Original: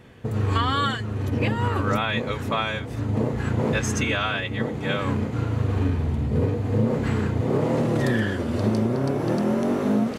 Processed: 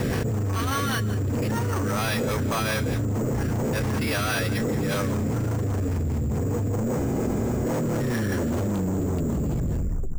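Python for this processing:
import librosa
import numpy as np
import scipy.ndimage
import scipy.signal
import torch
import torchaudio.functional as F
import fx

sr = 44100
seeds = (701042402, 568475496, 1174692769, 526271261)

y = fx.tape_stop_end(x, sr, length_s=1.58)
y = fx.high_shelf(y, sr, hz=8200.0, db=11.5)
y = 10.0 ** (-26.5 / 20.0) * np.tanh(y / 10.0 ** (-26.5 / 20.0))
y = fx.high_shelf(y, sr, hz=3300.0, db=-10.5)
y = y + 10.0 ** (-13.5 / 20.0) * np.pad(y, (int(172 * sr / 1000.0), 0))[:len(y)]
y = fx.rotary(y, sr, hz=5.0)
y = np.repeat(y[::6], 6)[:len(y)]
y = fx.spec_freeze(y, sr, seeds[0], at_s=7.02, hold_s=0.62)
y = fx.env_flatten(y, sr, amount_pct=100)
y = F.gain(torch.from_numpy(y), 3.0).numpy()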